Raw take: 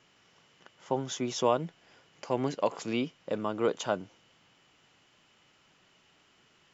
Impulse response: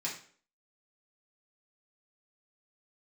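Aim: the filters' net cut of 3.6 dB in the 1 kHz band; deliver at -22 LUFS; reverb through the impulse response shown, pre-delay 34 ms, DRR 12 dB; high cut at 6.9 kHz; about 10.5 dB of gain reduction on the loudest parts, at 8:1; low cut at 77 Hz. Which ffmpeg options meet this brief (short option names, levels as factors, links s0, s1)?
-filter_complex "[0:a]highpass=77,lowpass=6900,equalizer=f=1000:t=o:g=-4.5,acompressor=threshold=0.0224:ratio=8,asplit=2[s0][s1];[1:a]atrim=start_sample=2205,adelay=34[s2];[s1][s2]afir=irnorm=-1:irlink=0,volume=0.178[s3];[s0][s3]amix=inputs=2:normalize=0,volume=7.5"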